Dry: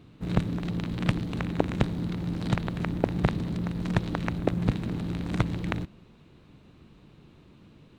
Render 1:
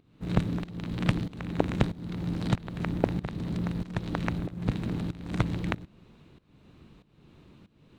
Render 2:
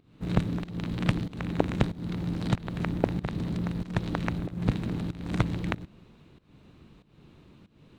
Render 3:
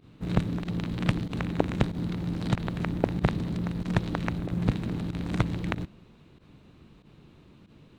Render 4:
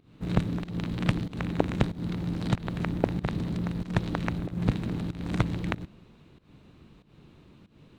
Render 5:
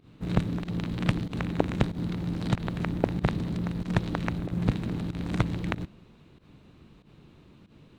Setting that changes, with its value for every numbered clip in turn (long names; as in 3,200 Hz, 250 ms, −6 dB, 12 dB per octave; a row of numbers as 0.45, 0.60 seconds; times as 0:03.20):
fake sidechain pumping, release: 491, 310, 65, 211, 101 milliseconds